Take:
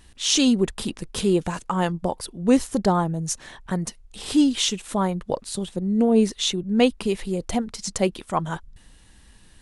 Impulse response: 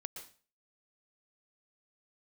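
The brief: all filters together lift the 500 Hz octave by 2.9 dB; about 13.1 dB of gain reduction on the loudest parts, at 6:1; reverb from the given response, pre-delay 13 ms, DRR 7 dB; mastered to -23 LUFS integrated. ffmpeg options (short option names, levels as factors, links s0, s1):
-filter_complex "[0:a]equalizer=f=500:t=o:g=3.5,acompressor=threshold=0.0562:ratio=6,asplit=2[s0][s1];[1:a]atrim=start_sample=2205,adelay=13[s2];[s1][s2]afir=irnorm=-1:irlink=0,volume=0.596[s3];[s0][s3]amix=inputs=2:normalize=0,volume=2.11"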